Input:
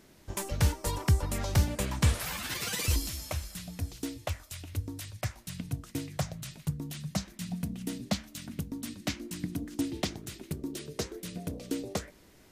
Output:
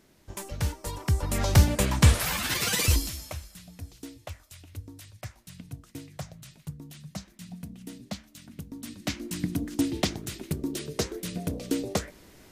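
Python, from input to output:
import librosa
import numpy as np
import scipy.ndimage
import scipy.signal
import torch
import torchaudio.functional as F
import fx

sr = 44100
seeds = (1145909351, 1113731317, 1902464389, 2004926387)

y = fx.gain(x, sr, db=fx.line((1.01, -3.0), (1.44, 7.0), (2.82, 7.0), (3.51, -6.0), (8.5, -6.0), (9.36, 5.5)))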